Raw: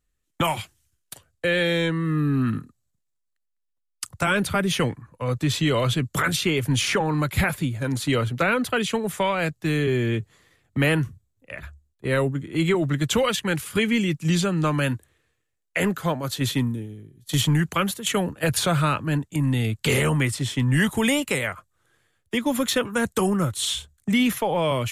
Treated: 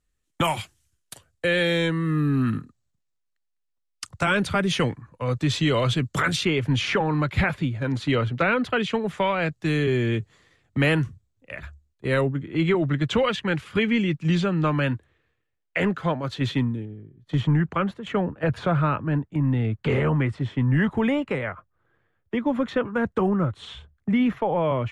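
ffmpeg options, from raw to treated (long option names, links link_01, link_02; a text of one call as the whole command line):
ffmpeg -i in.wav -af "asetnsamples=nb_out_samples=441:pad=0,asendcmd='2.57 lowpass f 6500;6.45 lowpass f 3600;9.52 lowpass f 6900;12.21 lowpass f 3200;16.85 lowpass f 1600',lowpass=11000" out.wav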